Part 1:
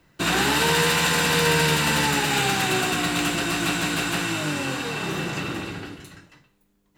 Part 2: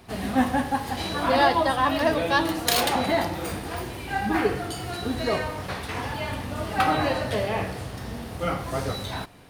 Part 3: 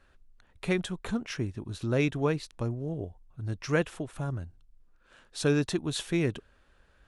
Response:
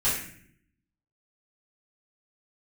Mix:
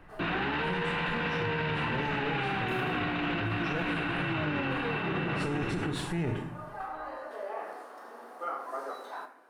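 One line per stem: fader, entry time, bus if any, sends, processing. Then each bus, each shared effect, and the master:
+3.0 dB, 0.00 s, bus A, no send, dry
-7.0 dB, 0.00 s, no bus, send -15 dB, Bessel high-pass 520 Hz, order 8; resonant high shelf 1900 Hz -12.5 dB, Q 1.5; compressor 4:1, threshold -25 dBFS, peak gain reduction 9 dB; auto duck -18 dB, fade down 0.25 s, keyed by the third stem
+1.0 dB, 0.00 s, bus A, send -16.5 dB, notch 6400 Hz; one-sided clip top -29 dBFS
bus A: 0.0 dB, LPF 2800 Hz 24 dB/oct; limiter -14 dBFS, peak gain reduction 7.5 dB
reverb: on, RT60 0.60 s, pre-delay 3 ms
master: limiter -23 dBFS, peak gain reduction 11.5 dB

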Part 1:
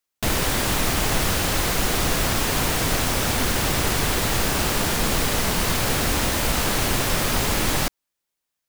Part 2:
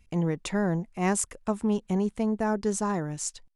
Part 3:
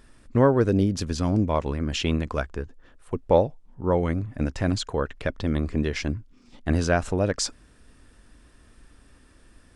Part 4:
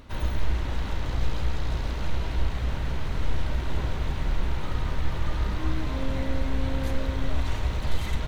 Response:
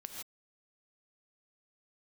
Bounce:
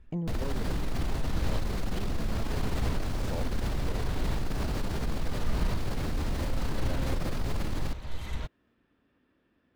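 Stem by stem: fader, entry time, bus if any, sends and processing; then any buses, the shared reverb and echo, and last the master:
-6.0 dB, 0.05 s, bus A, no send, bell 4400 Hz +4 dB 0.52 oct
-7.0 dB, 0.00 s, bus A, no send, compressor, threshold -29 dBFS, peak gain reduction 9.5 dB
-14.0 dB, 0.00 s, bus A, no send, HPF 220 Hz 12 dB/oct; synth low-pass 3200 Hz, resonance Q 1.6
-4.0 dB, 0.20 s, no bus, no send, dB-ramp tremolo swelling 0.72 Hz, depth 21 dB
bus A: 0.0 dB, tilt -3 dB/oct; limiter -23 dBFS, peak gain reduction 18 dB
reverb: off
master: dry

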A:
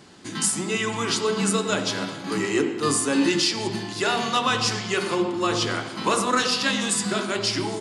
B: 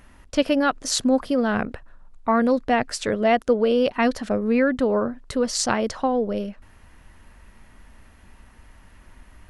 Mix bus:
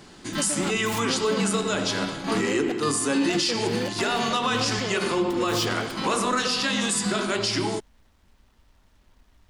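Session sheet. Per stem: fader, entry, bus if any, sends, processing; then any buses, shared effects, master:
+1.5 dB, 0.00 s, no send, dry
-10.5 dB, 0.00 s, muted 2.72–3.29, no send, noise-modulated delay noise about 1700 Hz, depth 0.11 ms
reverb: off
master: limiter -15 dBFS, peak gain reduction 7 dB

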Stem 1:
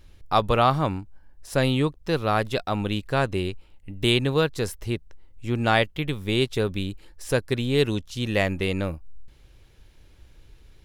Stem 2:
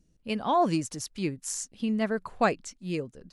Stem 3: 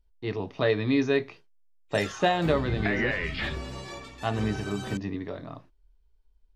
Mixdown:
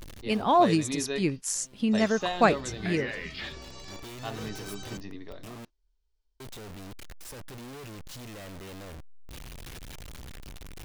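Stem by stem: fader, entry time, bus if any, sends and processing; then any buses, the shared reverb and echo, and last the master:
-16.5 dB, 0.00 s, muted 5.65–6.4, no send, infinite clipping; auto duck -16 dB, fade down 0.95 s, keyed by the second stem
+3.0 dB, 0.00 s, no send, dry
-8.0 dB, 0.00 s, no send, LPF 6400 Hz 24 dB/oct; tone controls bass -4 dB, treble +14 dB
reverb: off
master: dry

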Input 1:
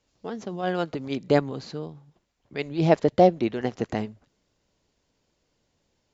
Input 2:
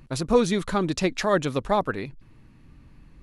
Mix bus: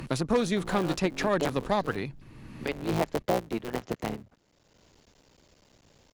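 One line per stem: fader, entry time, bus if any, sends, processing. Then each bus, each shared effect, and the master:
-8.0 dB, 0.10 s, no send, cycle switcher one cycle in 3, muted
-4.0 dB, 0.00 s, no send, added harmonics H 2 -9 dB, 4 -13 dB, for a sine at -7 dBFS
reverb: off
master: three-band squash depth 70%

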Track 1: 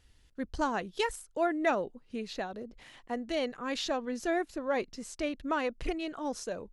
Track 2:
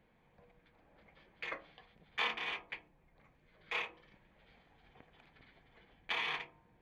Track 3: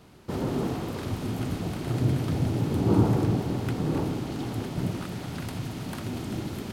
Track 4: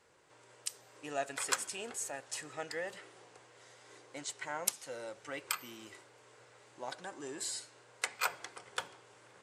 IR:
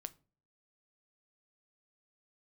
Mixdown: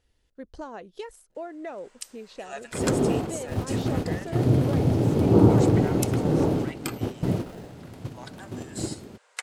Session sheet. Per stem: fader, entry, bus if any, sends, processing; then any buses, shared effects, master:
-7.5 dB, 0.00 s, no send, compressor, threshold -31 dBFS, peak gain reduction 8.5 dB
-9.0 dB, 1.30 s, no send, sample-and-hold 39×
-1.0 dB, 2.45 s, no send, gate -30 dBFS, range -13 dB; low shelf 380 Hz +4.5 dB
+0.5 dB, 1.35 s, no send, HPF 1100 Hz 12 dB/oct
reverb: off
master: bell 510 Hz +8 dB 1.4 oct

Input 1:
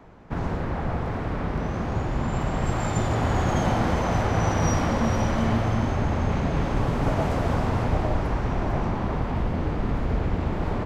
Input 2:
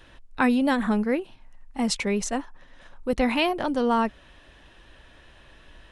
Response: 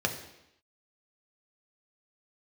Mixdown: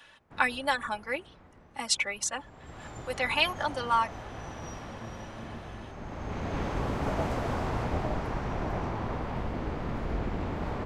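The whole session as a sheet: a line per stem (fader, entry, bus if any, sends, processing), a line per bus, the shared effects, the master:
2.33 s -15 dB -> 2.88 s -4 dB, 0.00 s, no send, octaver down 1 oct, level +3 dB; low shelf 240 Hz -10 dB; auto duck -12 dB, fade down 1.70 s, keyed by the second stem
0.0 dB, 0.00 s, no send, comb 3.5 ms, depth 64%; reverb removal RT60 0.58 s; HPF 890 Hz 12 dB/oct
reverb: off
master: dry

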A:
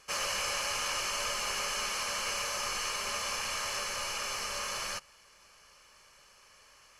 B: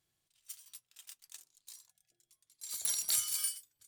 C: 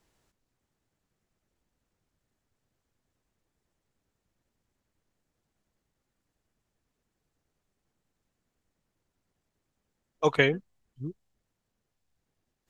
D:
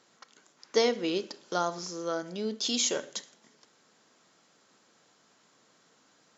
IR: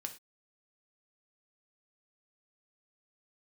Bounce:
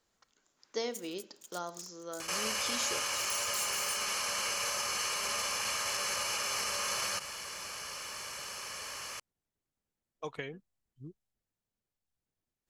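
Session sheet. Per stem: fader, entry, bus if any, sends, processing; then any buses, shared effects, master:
+2.5 dB, 2.20 s, bus A, no send, fast leveller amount 50%
-12.0 dB, 0.45 s, bus A, no send, bell 6700 Hz +14.5 dB 0.22 oct; sample leveller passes 2
-11.0 dB, 0.00 s, no bus, no send, compressor 6:1, threshold -25 dBFS, peak gain reduction 9 dB
-15.5 dB, 0.00 s, no bus, no send, AGC gain up to 5 dB
bus A: 0.0 dB, HPF 78 Hz; limiter -26 dBFS, peak gain reduction 7.5 dB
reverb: off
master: high shelf 6900 Hz +5 dB

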